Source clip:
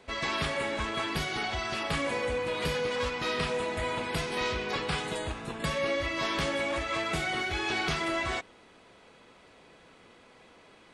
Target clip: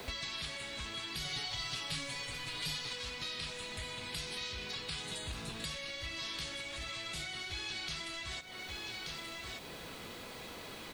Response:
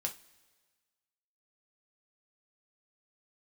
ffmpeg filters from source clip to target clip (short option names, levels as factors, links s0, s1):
-filter_complex "[0:a]acrossover=split=1400[s0][s1];[s0]asoftclip=type=tanh:threshold=0.015[s2];[s2][s1]amix=inputs=2:normalize=0,equalizer=f=4100:w=3.3:g=4.5,asplit=2[s3][s4];[s4]aecho=0:1:1181:0.158[s5];[s3][s5]amix=inputs=2:normalize=0,acrusher=bits=10:mix=0:aa=0.000001,acompressor=threshold=0.00398:ratio=5,asettb=1/sr,asplit=3[s6][s7][s8];[s6]atrim=end=1.244[s9];[s7]atrim=start=1.24:end=2.93,asetpts=PTS-STARTPTS,afade=t=in:d=0.004:c=qsin,afade=t=out:st=1.686:d=0.004:c=qsin,aecho=1:1:7:0.99,atrim=end_sample=74529[s10];[s8]atrim=start=2.926[s11];[s9][s10]acrossfade=d=0.004:c1=hsin:c2=qsin[s12];[s12][s11]acrossfade=d=0.004:c1=qsin:c2=hsin,acrossover=split=180|3000[s13][s14][s15];[s14]acompressor=threshold=0.00112:ratio=5[s16];[s13][s16][s15]amix=inputs=3:normalize=0,volume=3.98"